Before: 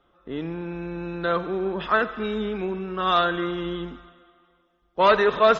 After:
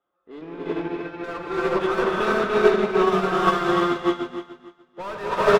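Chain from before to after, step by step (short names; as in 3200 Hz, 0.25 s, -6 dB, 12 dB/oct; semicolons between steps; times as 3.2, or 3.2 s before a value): overdrive pedal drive 34 dB, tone 1000 Hz, clips at -5.5 dBFS; feedback echo 0.293 s, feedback 52%, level -4.5 dB; non-linear reverb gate 0.44 s rising, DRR -3.5 dB; upward expander 2.5:1, over -25 dBFS; gain -6 dB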